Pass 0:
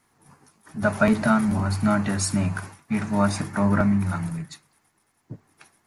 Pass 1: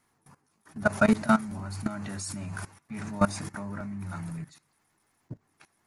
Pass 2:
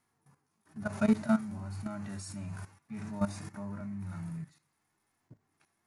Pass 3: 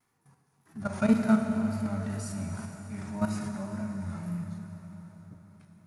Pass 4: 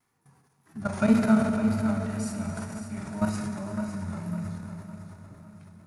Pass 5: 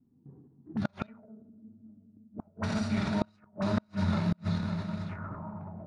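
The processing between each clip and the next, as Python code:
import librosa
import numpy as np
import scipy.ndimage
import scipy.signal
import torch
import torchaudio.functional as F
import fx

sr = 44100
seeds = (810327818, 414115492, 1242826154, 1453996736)

y1 = fx.dynamic_eq(x, sr, hz=7300.0, q=0.73, threshold_db=-46.0, ratio=4.0, max_db=6)
y1 = fx.level_steps(y1, sr, step_db=18)
y2 = fx.hpss(y1, sr, part='percussive', gain_db=-12)
y2 = y2 * 10.0 ** (-2.5 / 20.0)
y3 = fx.vibrato(y2, sr, rate_hz=1.9, depth_cents=85.0)
y3 = fx.rev_plate(y3, sr, seeds[0], rt60_s=4.6, hf_ratio=0.85, predelay_ms=0, drr_db=3.5)
y3 = y3 * 10.0 ** (2.5 / 20.0)
y4 = fx.transient(y3, sr, attack_db=3, sustain_db=8)
y4 = fx.echo_feedback(y4, sr, ms=556, feedback_pct=42, wet_db=-10)
y5 = fx.gate_flip(y4, sr, shuts_db=-23.0, range_db=-39)
y5 = fx.envelope_lowpass(y5, sr, base_hz=240.0, top_hz=3900.0, q=4.0, full_db=-37.5, direction='up')
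y5 = y5 * 10.0 ** (6.0 / 20.0)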